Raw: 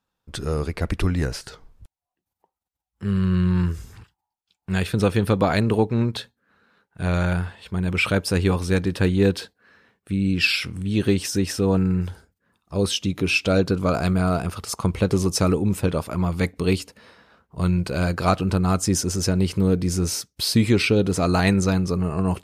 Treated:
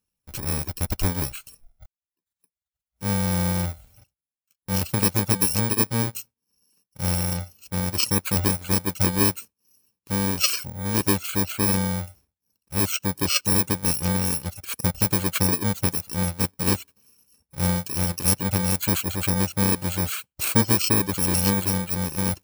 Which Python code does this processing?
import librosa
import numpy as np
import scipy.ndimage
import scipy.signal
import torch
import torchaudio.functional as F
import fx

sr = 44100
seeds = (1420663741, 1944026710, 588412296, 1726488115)

y = fx.bit_reversed(x, sr, seeds[0], block=64)
y = fx.dereverb_blind(y, sr, rt60_s=0.8)
y = y * librosa.db_to_amplitude(-1.0)